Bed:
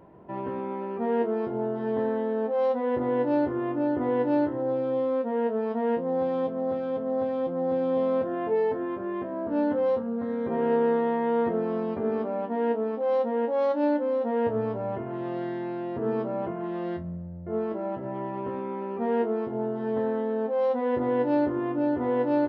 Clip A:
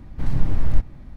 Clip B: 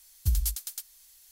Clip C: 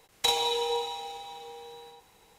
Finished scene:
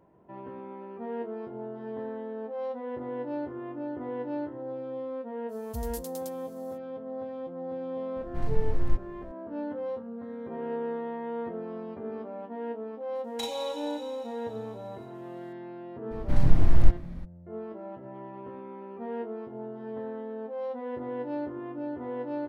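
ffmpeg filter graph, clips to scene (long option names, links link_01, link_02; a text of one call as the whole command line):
ffmpeg -i bed.wav -i cue0.wav -i cue1.wav -i cue2.wav -filter_complex "[1:a]asplit=2[link_01][link_02];[0:a]volume=-9.5dB[link_03];[2:a]alimiter=limit=-21dB:level=0:latency=1:release=26,atrim=end=1.31,asetpts=PTS-STARTPTS,volume=-8dB,afade=type=in:duration=0.05,afade=type=out:start_time=1.26:duration=0.05,adelay=5480[link_04];[link_01]atrim=end=1.16,asetpts=PTS-STARTPTS,volume=-8.5dB,afade=type=in:duration=0.004:curve=hsin,afade=type=out:start_time=1.156:duration=0.004:curve=hsin,adelay=8160[link_05];[3:a]atrim=end=2.38,asetpts=PTS-STARTPTS,volume=-11dB,afade=type=in:duration=0.004:curve=hsin,afade=type=out:start_time=2.376:duration=0.004:curve=hsin,adelay=13150[link_06];[link_02]atrim=end=1.16,asetpts=PTS-STARTPTS,afade=type=in:duration=0.02,afade=type=out:start_time=1.14:duration=0.02,adelay=16100[link_07];[link_03][link_04][link_05][link_06][link_07]amix=inputs=5:normalize=0" out.wav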